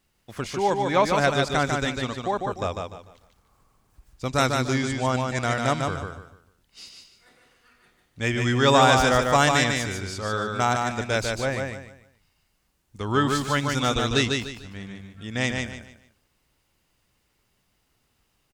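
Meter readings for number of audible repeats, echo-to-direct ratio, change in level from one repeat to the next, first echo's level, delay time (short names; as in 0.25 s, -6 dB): 3, -3.5 dB, -10.5 dB, -4.0 dB, 0.148 s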